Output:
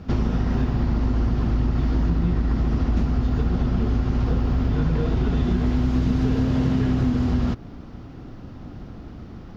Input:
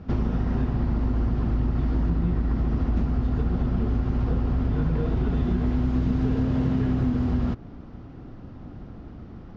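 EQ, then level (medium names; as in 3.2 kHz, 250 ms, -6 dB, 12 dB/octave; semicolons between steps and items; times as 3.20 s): treble shelf 3.3 kHz +10.5 dB; +2.5 dB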